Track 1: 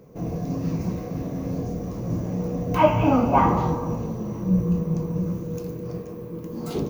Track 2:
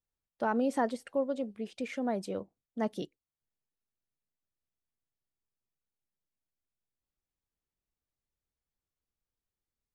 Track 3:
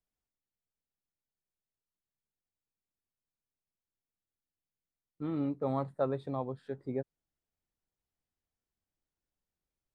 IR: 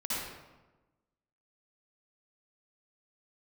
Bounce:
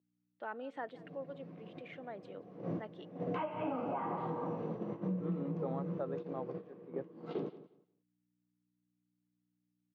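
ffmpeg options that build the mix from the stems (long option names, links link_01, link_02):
-filter_complex "[0:a]adelay=600,volume=-2dB,asplit=2[link_01][link_02];[link_02]volume=-20dB[link_03];[1:a]equalizer=frequency=5100:width_type=o:width=0.89:gain=-9.5,crystalizer=i=8.5:c=0,aeval=exprs='val(0)+0.00178*(sin(2*PI*60*n/s)+sin(2*PI*2*60*n/s)/2+sin(2*PI*3*60*n/s)/3+sin(2*PI*4*60*n/s)/4+sin(2*PI*5*60*n/s)/5)':channel_layout=same,volume=-14dB,asplit=3[link_04][link_05][link_06];[link_05]volume=-22dB[link_07];[2:a]volume=0dB[link_08];[link_06]apad=whole_len=330678[link_09];[link_01][link_09]sidechaincompress=threshold=-53dB:ratio=16:attack=25:release=329[link_10];[link_10][link_08]amix=inputs=2:normalize=0,agate=range=-13dB:threshold=-31dB:ratio=16:detection=peak,acompressor=threshold=-25dB:ratio=6,volume=0dB[link_11];[link_03][link_07]amix=inputs=2:normalize=0,aecho=0:1:177|354|531:1|0.16|0.0256[link_12];[link_04][link_11][link_12]amix=inputs=3:normalize=0,highpass=frequency=180:width=0.5412,highpass=frequency=180:width=1.3066,equalizer=frequency=230:width_type=q:width=4:gain=-9,equalizer=frequency=1000:width_type=q:width=4:gain=-3,equalizer=frequency=2400:width_type=q:width=4:gain=-4,lowpass=frequency=3100:width=0.5412,lowpass=frequency=3100:width=1.3066,alimiter=level_in=4dB:limit=-24dB:level=0:latency=1:release=449,volume=-4dB"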